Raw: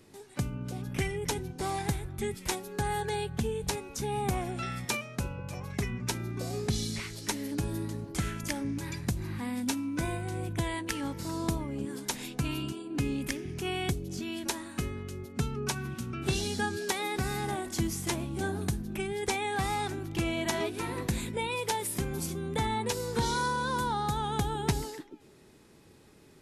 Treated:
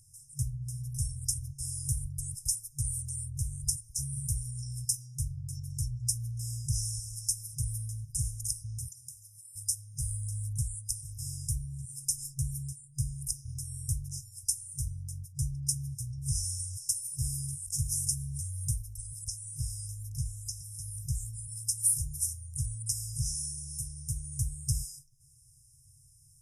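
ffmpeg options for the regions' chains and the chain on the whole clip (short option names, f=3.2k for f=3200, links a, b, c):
-filter_complex "[0:a]asettb=1/sr,asplit=3[a][b][c];[a]atrim=end=8.884[d];[b]atrim=start=8.88:end=9.56,asetpts=PTS-STARTPTS,afade=t=in:d=0.004:c=qsin,afade=t=out:st=0.676:d=0.004:c=qsin,highpass=370,acompressor=threshold=-42dB:ratio=5:attack=3.2:release=140:knee=1:detection=peak[e];[c]atrim=start=9.556[f];[d][e]acrossfade=d=0.004:c1=hsin:c2=qsin[g];[g][f]acrossfade=d=0.004:c1=qsin:c2=hsin,asettb=1/sr,asplit=3[h][i][j];[h]atrim=end=18.774[k];[i]atrim=start=18.77:end=21.66,asetpts=PTS-STARTPTS,afade=t=in:d=0.004:c=qsin,afade=t=out:st=2.886:d=0.004:c=qsin,acrossover=split=5700[l][m];[m]acompressor=threshold=-55dB:ratio=4:attack=1:release=60[n];[l][n]amix=inputs=2:normalize=0,highshelf=f=11k:g=11.5[o];[j]atrim=start=21.656[p];[k][o]acrossfade=d=0.004:c1=hsin:c2=qsin[q];[q][p]acrossfade=d=0.004:c1=qsin:c2=hsin,afftfilt=real='re*(1-between(b*sr/4096,140,5000))':imag='im*(1-between(b*sr/4096,140,5000))':win_size=4096:overlap=0.75,equalizer=f=9.4k:w=4.6:g=13.5,acontrast=58,volume=-4.5dB"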